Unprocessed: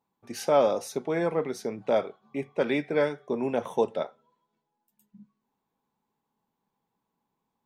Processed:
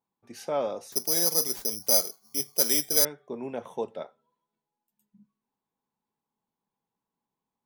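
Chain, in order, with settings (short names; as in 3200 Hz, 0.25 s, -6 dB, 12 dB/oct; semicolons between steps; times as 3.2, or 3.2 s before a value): 0.92–3.05 careless resampling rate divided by 8×, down none, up zero stuff; gain -7 dB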